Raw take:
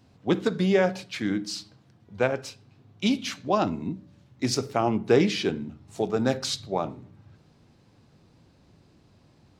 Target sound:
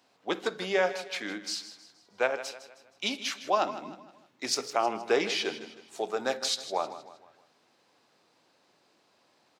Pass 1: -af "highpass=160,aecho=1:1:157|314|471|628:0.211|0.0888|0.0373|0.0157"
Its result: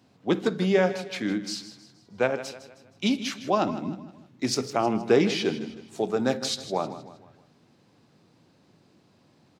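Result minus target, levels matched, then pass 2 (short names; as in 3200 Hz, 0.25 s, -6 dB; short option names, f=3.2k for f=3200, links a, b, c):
125 Hz band +14.0 dB
-af "highpass=570,aecho=1:1:157|314|471|628:0.211|0.0888|0.0373|0.0157"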